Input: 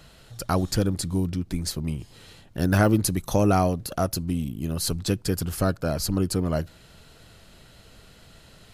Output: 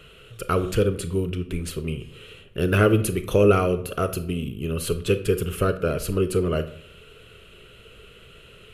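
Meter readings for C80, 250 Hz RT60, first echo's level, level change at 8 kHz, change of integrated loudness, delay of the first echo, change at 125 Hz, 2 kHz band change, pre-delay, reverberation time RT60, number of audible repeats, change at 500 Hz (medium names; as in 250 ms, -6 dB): 17.0 dB, 0.70 s, no echo, -4.0 dB, +2.0 dB, no echo, +0.5 dB, +3.5 dB, 24 ms, 0.65 s, no echo, +6.0 dB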